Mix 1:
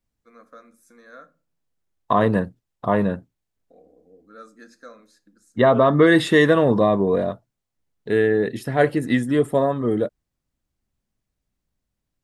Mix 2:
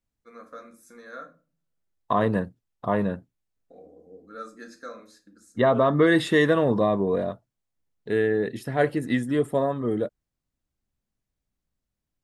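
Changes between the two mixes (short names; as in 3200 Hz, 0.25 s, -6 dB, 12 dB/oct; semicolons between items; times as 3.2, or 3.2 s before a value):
first voice: send +9.5 dB; second voice -4.5 dB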